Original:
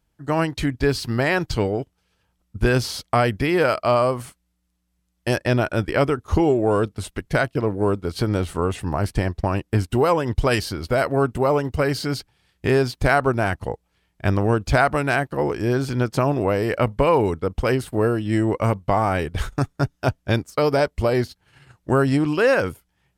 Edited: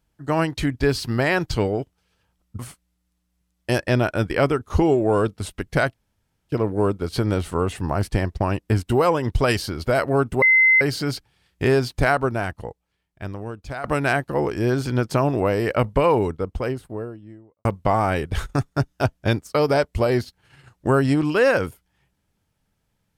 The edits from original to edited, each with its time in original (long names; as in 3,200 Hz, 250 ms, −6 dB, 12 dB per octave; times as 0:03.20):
0:02.59–0:04.17: remove
0:07.52: splice in room tone 0.55 s
0:11.45–0:11.84: beep over 2,060 Hz −11.5 dBFS
0:12.97–0:14.87: fade out quadratic, to −14.5 dB
0:16.90–0:18.68: fade out and dull